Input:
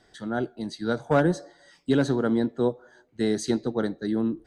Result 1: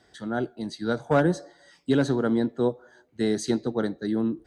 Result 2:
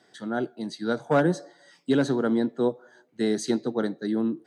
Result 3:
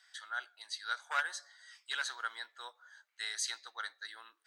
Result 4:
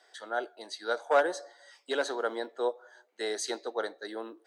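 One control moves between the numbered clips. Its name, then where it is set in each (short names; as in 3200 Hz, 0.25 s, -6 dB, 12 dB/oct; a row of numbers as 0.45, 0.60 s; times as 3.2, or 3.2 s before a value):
HPF, cutoff: 41, 140, 1300, 500 Hz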